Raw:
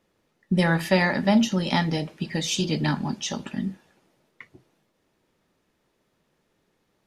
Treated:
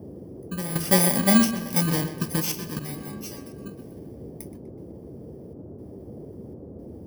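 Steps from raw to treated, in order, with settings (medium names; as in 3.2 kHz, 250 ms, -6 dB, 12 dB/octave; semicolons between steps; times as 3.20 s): bit-reversed sample order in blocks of 32 samples; 2.79–3.66 s: inharmonic resonator 69 Hz, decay 0.59 s, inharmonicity 0.002; trance gate "xxxxxx...xxx" 179 bpm -12 dB; on a send: tape echo 126 ms, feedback 55%, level -11 dB, low-pass 4.4 kHz; on the sum: band noise 64–450 Hz -42 dBFS; trim +1.5 dB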